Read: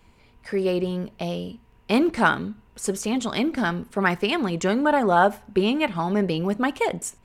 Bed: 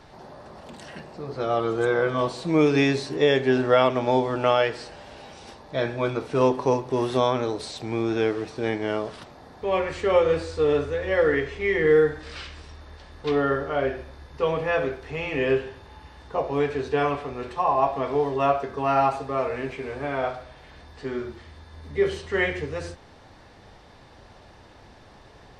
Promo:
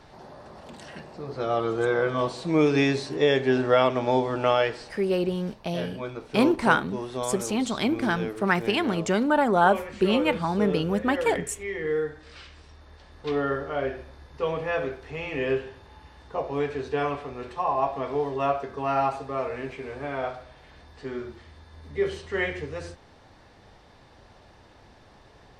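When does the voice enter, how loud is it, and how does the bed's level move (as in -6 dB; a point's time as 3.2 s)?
4.45 s, -1.5 dB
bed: 4.7 s -1.5 dB
5.1 s -9 dB
12.22 s -9 dB
13.37 s -3.5 dB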